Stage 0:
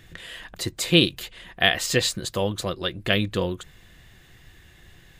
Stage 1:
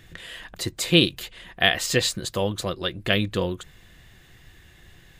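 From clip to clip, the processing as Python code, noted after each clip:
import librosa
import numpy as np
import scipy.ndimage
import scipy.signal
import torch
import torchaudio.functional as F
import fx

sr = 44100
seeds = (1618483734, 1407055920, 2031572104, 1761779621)

y = x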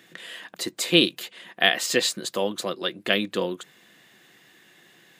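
y = scipy.signal.sosfilt(scipy.signal.butter(4, 200.0, 'highpass', fs=sr, output='sos'), x)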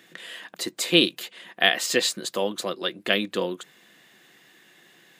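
y = fx.peak_eq(x, sr, hz=74.0, db=-7.5, octaves=1.4)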